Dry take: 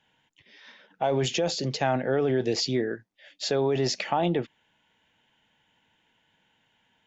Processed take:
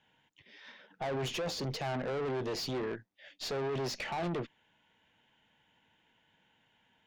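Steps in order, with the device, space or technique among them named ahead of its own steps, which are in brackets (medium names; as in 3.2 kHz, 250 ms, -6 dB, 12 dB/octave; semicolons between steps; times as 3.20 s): tube preamp driven hard (valve stage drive 32 dB, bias 0.4; treble shelf 6.2 kHz -8 dB)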